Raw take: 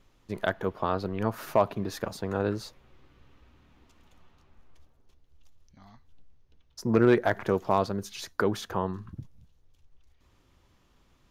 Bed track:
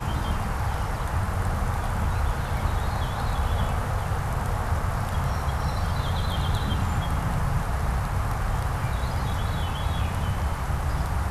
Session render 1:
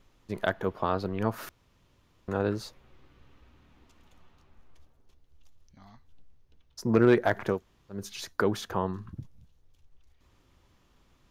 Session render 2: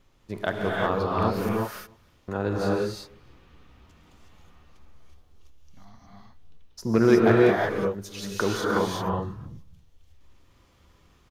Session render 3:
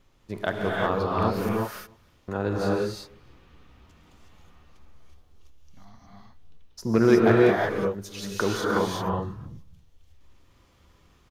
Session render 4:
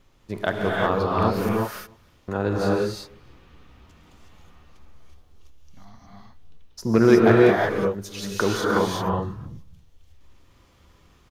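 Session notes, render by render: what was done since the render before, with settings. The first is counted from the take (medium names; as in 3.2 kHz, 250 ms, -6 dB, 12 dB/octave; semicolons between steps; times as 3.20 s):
1.49–2.28 s: room tone; 7.56–7.96 s: room tone, crossfade 0.16 s
echo from a far wall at 51 m, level -28 dB; gated-style reverb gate 390 ms rising, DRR -4 dB
no audible change
trim +3 dB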